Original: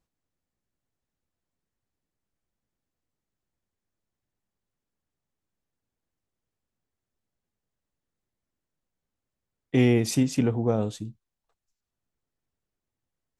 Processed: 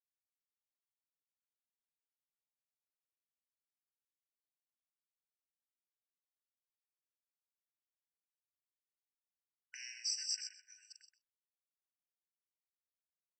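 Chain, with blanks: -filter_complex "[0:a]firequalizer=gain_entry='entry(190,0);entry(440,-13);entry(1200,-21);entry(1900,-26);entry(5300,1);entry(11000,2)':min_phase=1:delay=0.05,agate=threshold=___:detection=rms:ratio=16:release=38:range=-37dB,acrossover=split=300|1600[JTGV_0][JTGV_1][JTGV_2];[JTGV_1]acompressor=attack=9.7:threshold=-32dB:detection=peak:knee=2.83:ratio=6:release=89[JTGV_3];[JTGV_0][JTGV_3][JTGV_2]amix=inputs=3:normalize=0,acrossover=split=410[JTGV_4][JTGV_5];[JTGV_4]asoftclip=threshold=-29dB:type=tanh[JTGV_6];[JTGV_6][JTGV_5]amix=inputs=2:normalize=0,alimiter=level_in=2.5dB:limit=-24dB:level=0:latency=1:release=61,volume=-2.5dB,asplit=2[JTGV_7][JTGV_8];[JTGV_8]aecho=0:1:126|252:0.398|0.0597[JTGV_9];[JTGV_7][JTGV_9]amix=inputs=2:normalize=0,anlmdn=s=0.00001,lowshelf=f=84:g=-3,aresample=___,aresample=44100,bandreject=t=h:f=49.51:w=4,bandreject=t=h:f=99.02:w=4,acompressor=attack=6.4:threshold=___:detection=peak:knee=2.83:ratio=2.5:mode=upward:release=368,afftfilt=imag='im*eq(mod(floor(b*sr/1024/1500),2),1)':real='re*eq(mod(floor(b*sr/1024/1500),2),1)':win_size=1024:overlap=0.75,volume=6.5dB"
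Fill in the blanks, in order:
-40dB, 16000, -51dB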